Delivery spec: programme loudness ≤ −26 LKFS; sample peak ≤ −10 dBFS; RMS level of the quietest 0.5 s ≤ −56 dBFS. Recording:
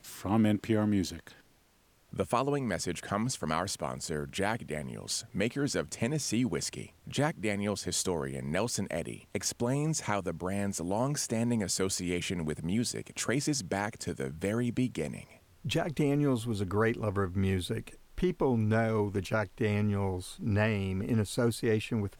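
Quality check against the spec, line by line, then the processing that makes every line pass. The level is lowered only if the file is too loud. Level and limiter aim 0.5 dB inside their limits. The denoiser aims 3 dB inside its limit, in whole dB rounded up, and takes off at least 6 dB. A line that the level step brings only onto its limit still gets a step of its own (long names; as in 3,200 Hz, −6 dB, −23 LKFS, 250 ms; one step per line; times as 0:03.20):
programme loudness −31.5 LKFS: in spec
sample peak −13.5 dBFS: in spec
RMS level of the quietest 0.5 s −66 dBFS: in spec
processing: no processing needed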